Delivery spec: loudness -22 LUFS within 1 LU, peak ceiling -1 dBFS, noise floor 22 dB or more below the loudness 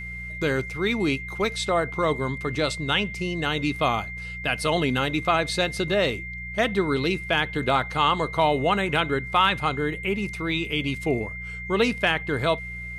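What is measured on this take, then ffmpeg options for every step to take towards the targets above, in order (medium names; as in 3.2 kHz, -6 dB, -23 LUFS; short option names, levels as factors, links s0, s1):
hum 60 Hz; highest harmonic 180 Hz; hum level -37 dBFS; steady tone 2.1 kHz; tone level -34 dBFS; loudness -24.5 LUFS; peak level -8.5 dBFS; loudness target -22.0 LUFS
-> -af "bandreject=f=60:t=h:w=4,bandreject=f=120:t=h:w=4,bandreject=f=180:t=h:w=4"
-af "bandreject=f=2100:w=30"
-af "volume=1.33"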